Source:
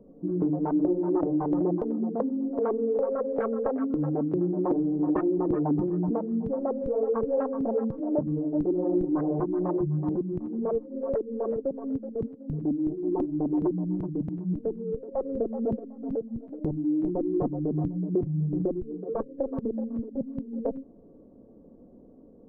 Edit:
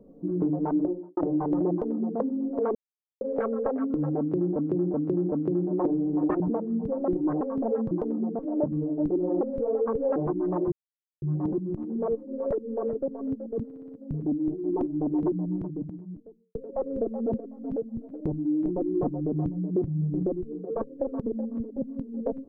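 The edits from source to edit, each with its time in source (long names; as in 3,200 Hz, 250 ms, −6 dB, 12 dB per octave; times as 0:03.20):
0:00.71–0:01.17: fade out and dull
0:01.71–0:02.19: duplicate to 0:07.94
0:02.75–0:03.21: silence
0:04.18–0:04.56: repeat, 4 plays
0:05.26–0:06.01: remove
0:06.69–0:07.44: swap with 0:08.96–0:09.29
0:09.85: splice in silence 0.50 s
0:12.28: stutter 0.06 s, 5 plays
0:13.71–0:14.94: fade out and dull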